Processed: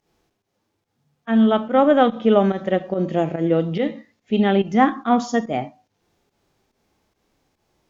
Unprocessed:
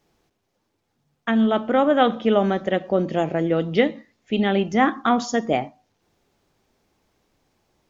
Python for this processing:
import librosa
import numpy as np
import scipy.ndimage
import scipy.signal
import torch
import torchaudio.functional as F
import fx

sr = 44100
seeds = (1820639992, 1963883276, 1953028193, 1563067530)

y = fx.volume_shaper(x, sr, bpm=143, per_beat=1, depth_db=-15, release_ms=122.0, shape='fast start')
y = fx.cheby_harmonics(y, sr, harmonics=(6,), levels_db=(-40,), full_scale_db=-4.0)
y = fx.hpss(y, sr, part='harmonic', gain_db=9)
y = y * librosa.db_to_amplitude(-5.5)